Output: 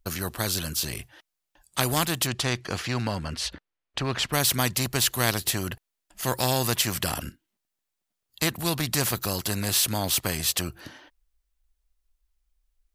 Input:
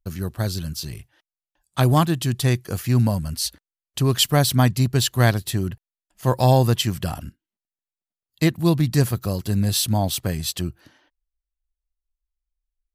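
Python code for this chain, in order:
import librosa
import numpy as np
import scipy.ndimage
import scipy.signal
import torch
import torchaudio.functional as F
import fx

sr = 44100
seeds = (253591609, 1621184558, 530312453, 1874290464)

y = fx.lowpass(x, sr, hz=fx.line((2.26, 5100.0), (4.32, 2400.0)), slope=12, at=(2.26, 4.32), fade=0.02)
y = fx.spectral_comp(y, sr, ratio=2.0)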